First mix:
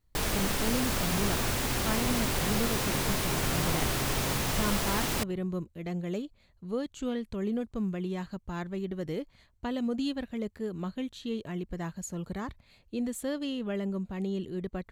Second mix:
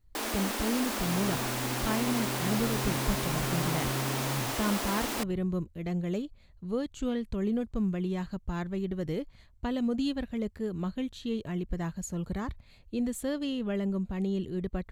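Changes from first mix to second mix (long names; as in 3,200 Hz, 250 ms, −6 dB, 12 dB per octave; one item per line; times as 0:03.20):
first sound: add Chebyshev high-pass with heavy ripple 210 Hz, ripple 3 dB
master: add low-shelf EQ 110 Hz +10 dB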